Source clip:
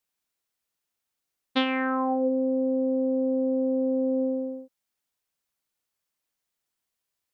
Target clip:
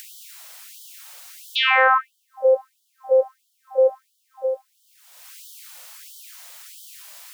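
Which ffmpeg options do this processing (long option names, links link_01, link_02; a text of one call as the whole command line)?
ffmpeg -i in.wav -af "acompressor=mode=upward:threshold=-37dB:ratio=2.5,alimiter=level_in=17dB:limit=-1dB:release=50:level=0:latency=1,afftfilt=real='re*gte(b*sr/1024,470*pow(3000/470,0.5+0.5*sin(2*PI*1.5*pts/sr)))':imag='im*gte(b*sr/1024,470*pow(3000/470,0.5+0.5*sin(2*PI*1.5*pts/sr)))':win_size=1024:overlap=0.75,volume=-1.5dB" out.wav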